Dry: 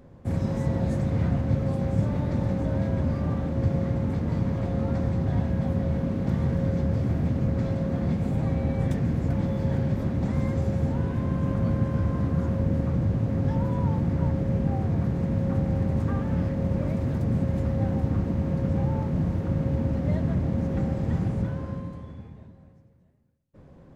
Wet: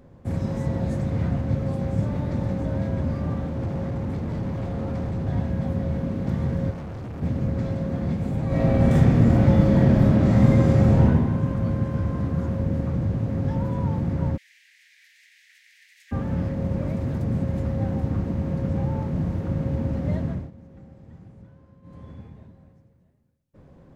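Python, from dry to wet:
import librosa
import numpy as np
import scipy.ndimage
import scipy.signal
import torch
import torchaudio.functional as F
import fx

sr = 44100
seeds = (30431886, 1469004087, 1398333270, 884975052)

y = fx.overload_stage(x, sr, gain_db=24.0, at=(3.46, 5.27))
y = fx.clip_hard(y, sr, threshold_db=-32.5, at=(6.7, 7.21), fade=0.02)
y = fx.reverb_throw(y, sr, start_s=8.47, length_s=2.57, rt60_s=1.5, drr_db=-9.0)
y = fx.steep_highpass(y, sr, hz=1800.0, slope=72, at=(14.36, 16.11), fade=0.02)
y = fx.edit(y, sr, fx.fade_down_up(start_s=20.11, length_s=2.11, db=-20.0, fade_s=0.4, curve='qsin'), tone=tone)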